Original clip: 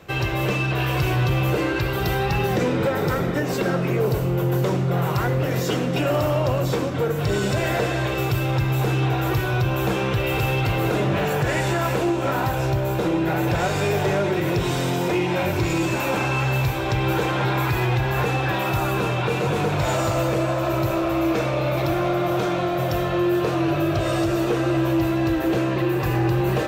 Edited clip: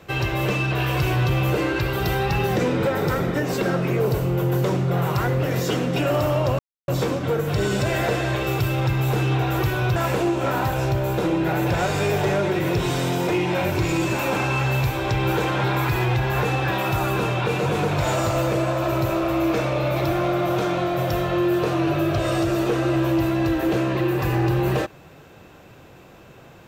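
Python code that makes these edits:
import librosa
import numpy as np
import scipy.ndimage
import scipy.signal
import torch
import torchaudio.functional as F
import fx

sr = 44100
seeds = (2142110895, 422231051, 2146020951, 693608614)

y = fx.edit(x, sr, fx.insert_silence(at_s=6.59, length_s=0.29),
    fx.cut(start_s=9.67, length_s=2.1), tone=tone)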